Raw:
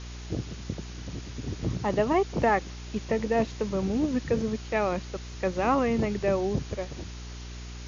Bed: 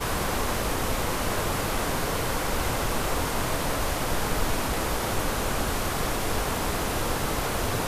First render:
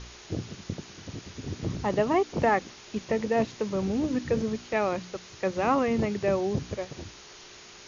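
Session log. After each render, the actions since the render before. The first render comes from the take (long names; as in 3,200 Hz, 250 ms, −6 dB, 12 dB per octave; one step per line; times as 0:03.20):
hum removal 60 Hz, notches 5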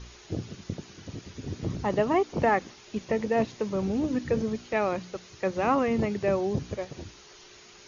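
broadband denoise 6 dB, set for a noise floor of −49 dBFS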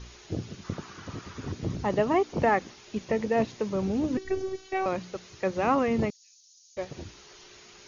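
0:00.64–0:01.52: parametric band 1,200 Hz +13.5 dB 1 octave
0:04.17–0:04.86: phases set to zero 379 Hz
0:06.10–0:06.77: inverse Chebyshev high-pass filter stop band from 930 Hz, stop band 80 dB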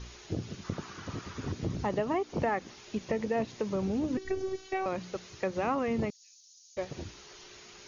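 downward compressor 2.5 to 1, threshold −29 dBFS, peak gain reduction 7.5 dB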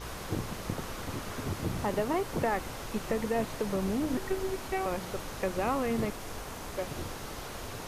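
mix in bed −13.5 dB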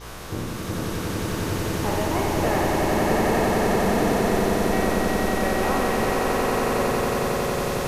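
peak hold with a decay on every bin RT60 1.29 s
echo that builds up and dies away 91 ms, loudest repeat 8, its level −4.5 dB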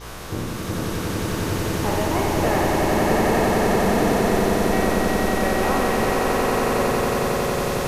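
level +2 dB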